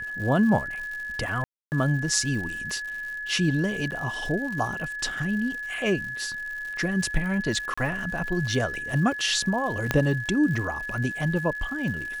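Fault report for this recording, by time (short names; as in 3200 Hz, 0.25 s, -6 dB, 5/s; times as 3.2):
crackle 160/s -35 dBFS
tone 1700 Hz -31 dBFS
1.44–1.72 gap 0.279 s
3.91–3.92 gap 8.5 ms
7.74–7.78 gap 35 ms
9.91 pop -8 dBFS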